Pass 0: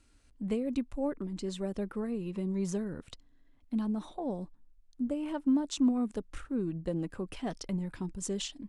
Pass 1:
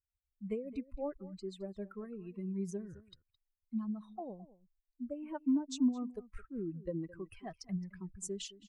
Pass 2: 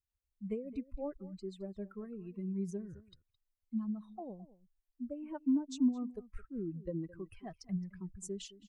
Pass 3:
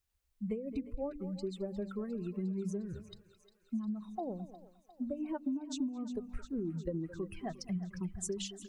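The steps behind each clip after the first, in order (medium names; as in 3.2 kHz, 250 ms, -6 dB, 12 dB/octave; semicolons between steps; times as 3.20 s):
expander on every frequency bin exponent 2; dynamic bell 2.8 kHz, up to -3 dB, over -55 dBFS, Q 0.71; echo from a far wall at 37 m, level -18 dB; trim -1.5 dB
bass shelf 410 Hz +6 dB; trim -4 dB
de-hum 48.91 Hz, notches 6; compression 10:1, threshold -41 dBFS, peak gain reduction 15.5 dB; thinning echo 355 ms, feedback 76%, high-pass 650 Hz, level -14 dB; trim +8 dB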